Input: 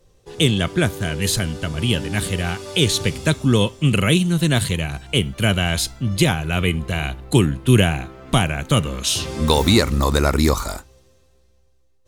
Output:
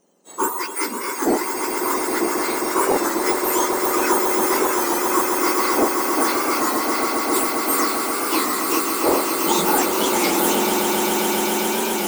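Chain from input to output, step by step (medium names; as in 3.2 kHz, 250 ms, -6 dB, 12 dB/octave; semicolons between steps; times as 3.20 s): spectrum inverted on a logarithmic axis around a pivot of 1.8 kHz; saturation -11 dBFS, distortion -18 dB; echo with a slow build-up 134 ms, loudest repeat 8, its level -8 dB; warped record 33 1/3 rpm, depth 100 cents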